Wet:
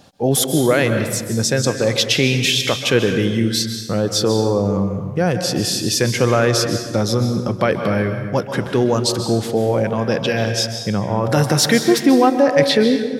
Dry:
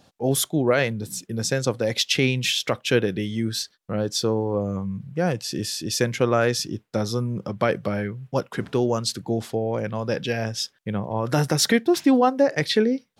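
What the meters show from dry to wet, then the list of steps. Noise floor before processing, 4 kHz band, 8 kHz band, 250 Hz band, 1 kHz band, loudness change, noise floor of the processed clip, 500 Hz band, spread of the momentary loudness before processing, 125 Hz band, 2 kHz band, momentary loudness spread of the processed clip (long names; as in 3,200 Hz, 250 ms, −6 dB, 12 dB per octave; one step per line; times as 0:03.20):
−65 dBFS, +6.5 dB, +7.0 dB, +6.5 dB, +5.5 dB, +6.5 dB, −28 dBFS, +6.0 dB, 9 LU, +7.0 dB, +6.0 dB, 6 LU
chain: in parallel at +2 dB: brickwall limiter −18.5 dBFS, peak gain reduction 10.5 dB
on the sum: dense smooth reverb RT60 1.3 s, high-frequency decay 0.7×, pre-delay 120 ms, DRR 6.5 dB
level +1 dB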